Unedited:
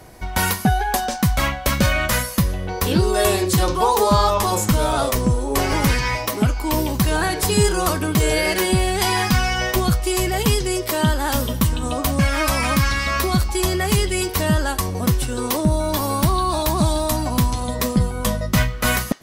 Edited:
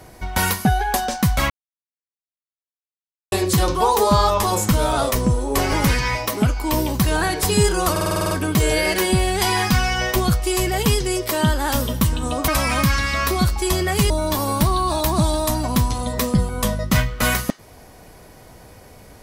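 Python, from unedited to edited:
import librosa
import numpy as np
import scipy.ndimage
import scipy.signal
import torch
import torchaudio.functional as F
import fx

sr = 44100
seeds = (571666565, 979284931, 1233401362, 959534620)

y = fx.edit(x, sr, fx.silence(start_s=1.5, length_s=1.82),
    fx.stutter(start_s=7.91, slice_s=0.05, count=9),
    fx.cut(start_s=12.08, length_s=0.33),
    fx.cut(start_s=14.03, length_s=1.69), tone=tone)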